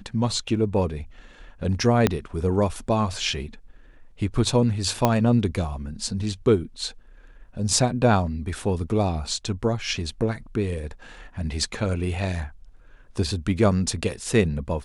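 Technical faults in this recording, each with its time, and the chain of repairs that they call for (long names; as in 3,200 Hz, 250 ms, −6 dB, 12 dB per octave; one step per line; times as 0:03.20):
0:02.07: click −5 dBFS
0:05.05: click −5 dBFS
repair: click removal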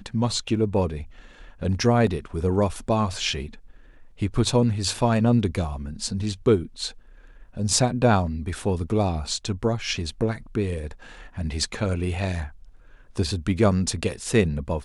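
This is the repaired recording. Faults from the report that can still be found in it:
0:02.07: click
0:05.05: click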